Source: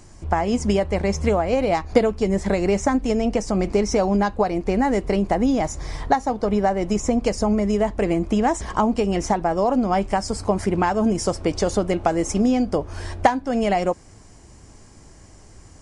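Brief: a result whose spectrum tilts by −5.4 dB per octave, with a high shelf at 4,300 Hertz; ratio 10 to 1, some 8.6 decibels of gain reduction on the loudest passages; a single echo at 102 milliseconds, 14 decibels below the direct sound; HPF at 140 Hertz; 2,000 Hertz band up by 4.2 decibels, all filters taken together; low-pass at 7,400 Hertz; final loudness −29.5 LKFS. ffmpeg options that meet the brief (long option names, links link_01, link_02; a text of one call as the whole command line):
ffmpeg -i in.wav -af "highpass=140,lowpass=7400,equalizer=frequency=2000:width_type=o:gain=6.5,highshelf=frequency=4300:gain=-8,acompressor=threshold=-19dB:ratio=10,aecho=1:1:102:0.2,volume=-4.5dB" out.wav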